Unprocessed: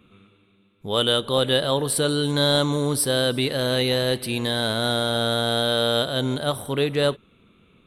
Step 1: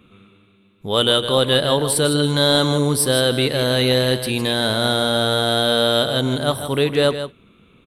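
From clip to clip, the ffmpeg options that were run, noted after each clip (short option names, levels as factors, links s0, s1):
-af "aecho=1:1:157:0.316,volume=1.58"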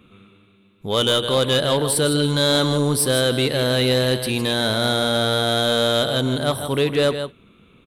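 -af "asoftclip=type=tanh:threshold=0.316"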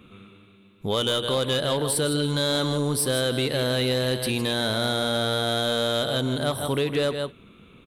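-af "acompressor=threshold=0.0562:ratio=3,volume=1.19"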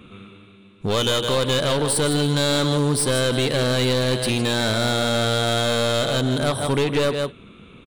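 -af "aresample=22050,aresample=44100,aeval=exprs='clip(val(0),-1,0.0501)':c=same,volume=1.88"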